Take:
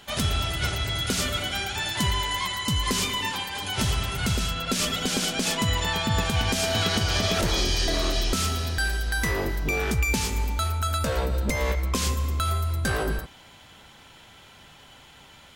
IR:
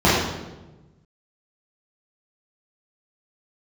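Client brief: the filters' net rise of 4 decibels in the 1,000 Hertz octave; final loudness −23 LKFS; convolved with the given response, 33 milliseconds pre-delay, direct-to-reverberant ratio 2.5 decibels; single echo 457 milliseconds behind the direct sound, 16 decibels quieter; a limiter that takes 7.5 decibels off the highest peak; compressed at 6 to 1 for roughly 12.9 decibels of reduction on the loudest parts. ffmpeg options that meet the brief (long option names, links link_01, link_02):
-filter_complex "[0:a]equalizer=frequency=1000:width_type=o:gain=5,acompressor=threshold=-34dB:ratio=6,alimiter=level_in=5dB:limit=-24dB:level=0:latency=1,volume=-5dB,aecho=1:1:457:0.158,asplit=2[link_01][link_02];[1:a]atrim=start_sample=2205,adelay=33[link_03];[link_02][link_03]afir=irnorm=-1:irlink=0,volume=-27dB[link_04];[link_01][link_04]amix=inputs=2:normalize=0,volume=11.5dB"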